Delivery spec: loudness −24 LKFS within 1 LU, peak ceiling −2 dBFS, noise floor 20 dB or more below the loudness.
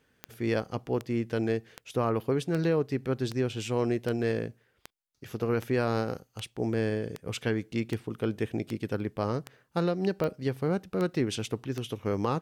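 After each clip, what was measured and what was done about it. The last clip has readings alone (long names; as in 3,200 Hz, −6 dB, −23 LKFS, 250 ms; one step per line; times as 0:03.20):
number of clicks 16; integrated loudness −31.0 LKFS; sample peak −13.5 dBFS; target loudness −24.0 LKFS
→ click removal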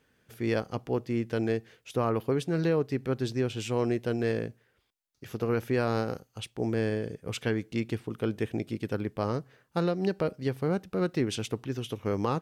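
number of clicks 0; integrated loudness −31.0 LKFS; sample peak −16.5 dBFS; target loudness −24.0 LKFS
→ level +7 dB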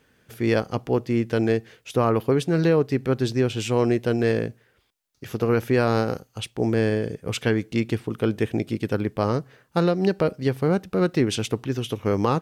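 integrated loudness −24.0 LKFS; sample peak −9.5 dBFS; background noise floor −65 dBFS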